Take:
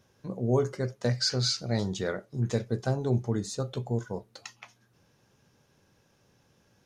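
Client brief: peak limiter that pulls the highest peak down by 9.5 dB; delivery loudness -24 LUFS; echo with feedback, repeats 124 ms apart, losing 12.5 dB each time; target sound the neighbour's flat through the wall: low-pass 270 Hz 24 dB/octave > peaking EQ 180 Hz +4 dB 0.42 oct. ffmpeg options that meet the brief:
-af "alimiter=limit=0.0708:level=0:latency=1,lowpass=f=270:w=0.5412,lowpass=f=270:w=1.3066,equalizer=f=180:t=o:w=0.42:g=4,aecho=1:1:124|248|372:0.237|0.0569|0.0137,volume=3.98"

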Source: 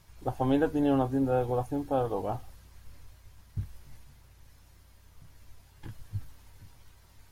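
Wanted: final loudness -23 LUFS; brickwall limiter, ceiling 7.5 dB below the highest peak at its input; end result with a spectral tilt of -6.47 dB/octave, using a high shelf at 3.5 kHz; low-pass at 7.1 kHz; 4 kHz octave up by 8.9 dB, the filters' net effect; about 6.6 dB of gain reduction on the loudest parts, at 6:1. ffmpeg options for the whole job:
-af "lowpass=7100,highshelf=f=3500:g=6.5,equalizer=f=4000:t=o:g=8,acompressor=threshold=0.0398:ratio=6,volume=5.62,alimiter=limit=0.266:level=0:latency=1"

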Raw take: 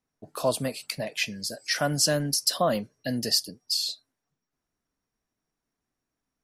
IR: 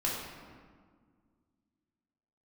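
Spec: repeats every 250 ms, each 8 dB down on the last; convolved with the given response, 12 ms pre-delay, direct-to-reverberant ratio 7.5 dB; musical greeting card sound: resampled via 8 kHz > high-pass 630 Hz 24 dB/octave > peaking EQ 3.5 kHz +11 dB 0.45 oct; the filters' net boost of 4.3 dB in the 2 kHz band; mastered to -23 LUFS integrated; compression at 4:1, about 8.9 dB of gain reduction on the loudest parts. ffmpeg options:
-filter_complex "[0:a]equalizer=f=2000:t=o:g=4,acompressor=threshold=0.0355:ratio=4,aecho=1:1:250|500|750|1000|1250:0.398|0.159|0.0637|0.0255|0.0102,asplit=2[s0][s1];[1:a]atrim=start_sample=2205,adelay=12[s2];[s1][s2]afir=irnorm=-1:irlink=0,volume=0.2[s3];[s0][s3]amix=inputs=2:normalize=0,aresample=8000,aresample=44100,highpass=f=630:w=0.5412,highpass=f=630:w=1.3066,equalizer=f=3500:t=o:w=0.45:g=11,volume=3.98"

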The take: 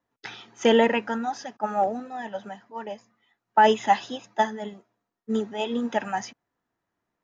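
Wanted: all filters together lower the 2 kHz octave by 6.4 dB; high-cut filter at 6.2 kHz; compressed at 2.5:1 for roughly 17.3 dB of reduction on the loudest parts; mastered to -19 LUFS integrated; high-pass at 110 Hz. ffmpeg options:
-af "highpass=110,lowpass=6200,equalizer=f=2000:t=o:g=-8,acompressor=threshold=0.00794:ratio=2.5,volume=13.3"

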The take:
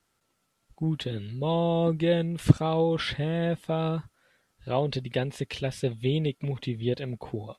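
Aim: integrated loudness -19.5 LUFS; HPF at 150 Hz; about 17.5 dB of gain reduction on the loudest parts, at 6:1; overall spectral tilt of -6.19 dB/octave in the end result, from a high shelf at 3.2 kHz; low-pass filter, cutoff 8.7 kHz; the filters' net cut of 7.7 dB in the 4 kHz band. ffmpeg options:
-af "highpass=150,lowpass=8700,highshelf=f=3200:g=-3,equalizer=f=4000:t=o:g=-8,acompressor=threshold=0.0224:ratio=6,volume=9.44"

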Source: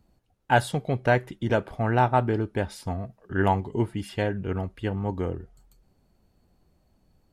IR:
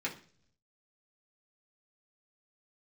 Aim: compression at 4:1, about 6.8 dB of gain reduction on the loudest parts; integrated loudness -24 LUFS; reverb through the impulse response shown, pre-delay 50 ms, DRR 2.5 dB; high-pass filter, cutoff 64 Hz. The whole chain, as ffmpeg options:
-filter_complex "[0:a]highpass=64,acompressor=threshold=0.0708:ratio=4,asplit=2[s0][s1];[1:a]atrim=start_sample=2205,adelay=50[s2];[s1][s2]afir=irnorm=-1:irlink=0,volume=0.473[s3];[s0][s3]amix=inputs=2:normalize=0,volume=1.78"

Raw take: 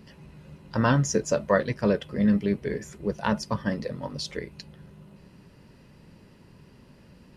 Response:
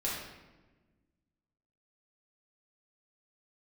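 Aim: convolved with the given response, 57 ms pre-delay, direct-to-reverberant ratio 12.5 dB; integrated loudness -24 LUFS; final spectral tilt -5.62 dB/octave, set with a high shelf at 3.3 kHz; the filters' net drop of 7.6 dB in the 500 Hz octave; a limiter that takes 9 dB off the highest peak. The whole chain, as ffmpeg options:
-filter_complex "[0:a]equalizer=f=500:t=o:g=-9,highshelf=f=3300:g=-4.5,alimiter=limit=0.106:level=0:latency=1,asplit=2[s0][s1];[1:a]atrim=start_sample=2205,adelay=57[s2];[s1][s2]afir=irnorm=-1:irlink=0,volume=0.126[s3];[s0][s3]amix=inputs=2:normalize=0,volume=2.51"

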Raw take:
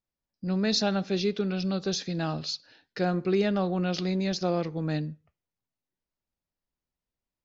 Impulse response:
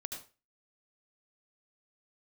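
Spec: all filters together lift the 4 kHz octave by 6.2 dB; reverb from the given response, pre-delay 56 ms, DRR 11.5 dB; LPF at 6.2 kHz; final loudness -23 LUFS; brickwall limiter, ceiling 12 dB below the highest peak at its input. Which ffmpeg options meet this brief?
-filter_complex "[0:a]lowpass=6200,equalizer=f=4000:t=o:g=8,alimiter=limit=0.0944:level=0:latency=1,asplit=2[s0][s1];[1:a]atrim=start_sample=2205,adelay=56[s2];[s1][s2]afir=irnorm=-1:irlink=0,volume=0.316[s3];[s0][s3]amix=inputs=2:normalize=0,volume=2.24"

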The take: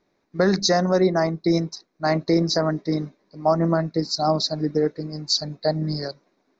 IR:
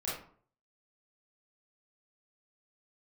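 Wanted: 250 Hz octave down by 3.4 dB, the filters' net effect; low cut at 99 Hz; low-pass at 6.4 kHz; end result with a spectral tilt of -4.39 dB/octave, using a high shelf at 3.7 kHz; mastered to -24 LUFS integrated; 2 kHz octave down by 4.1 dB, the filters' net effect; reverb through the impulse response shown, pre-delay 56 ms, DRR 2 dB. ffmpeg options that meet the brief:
-filter_complex "[0:a]highpass=99,lowpass=6400,equalizer=f=250:t=o:g=-5.5,equalizer=f=2000:t=o:g=-7,highshelf=f=3700:g=9,asplit=2[s0][s1];[1:a]atrim=start_sample=2205,adelay=56[s2];[s1][s2]afir=irnorm=-1:irlink=0,volume=0.501[s3];[s0][s3]amix=inputs=2:normalize=0,volume=0.708"

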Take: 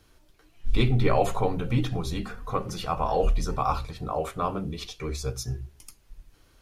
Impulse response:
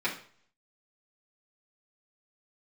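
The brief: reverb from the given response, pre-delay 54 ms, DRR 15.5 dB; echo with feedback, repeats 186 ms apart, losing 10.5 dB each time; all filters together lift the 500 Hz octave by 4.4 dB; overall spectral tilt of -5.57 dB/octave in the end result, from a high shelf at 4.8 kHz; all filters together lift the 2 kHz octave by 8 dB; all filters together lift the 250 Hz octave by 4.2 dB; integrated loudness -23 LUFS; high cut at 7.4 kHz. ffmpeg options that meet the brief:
-filter_complex "[0:a]lowpass=7400,equalizer=f=250:t=o:g=4.5,equalizer=f=500:t=o:g=3.5,equalizer=f=2000:t=o:g=8,highshelf=f=4800:g=9,aecho=1:1:186|372|558:0.299|0.0896|0.0269,asplit=2[s0][s1];[1:a]atrim=start_sample=2205,adelay=54[s2];[s1][s2]afir=irnorm=-1:irlink=0,volume=0.0596[s3];[s0][s3]amix=inputs=2:normalize=0,volume=1.19"

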